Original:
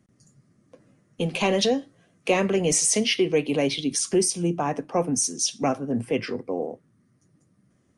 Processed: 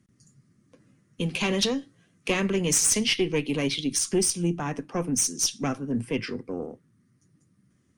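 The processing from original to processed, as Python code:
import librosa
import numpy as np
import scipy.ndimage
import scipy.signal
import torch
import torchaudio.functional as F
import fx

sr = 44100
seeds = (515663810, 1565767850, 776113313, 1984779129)

y = fx.cheby_harmonics(x, sr, harmonics=(2,), levels_db=(-11,), full_scale_db=-8.5)
y = fx.peak_eq(y, sr, hz=650.0, db=-10.0, octaves=1.2)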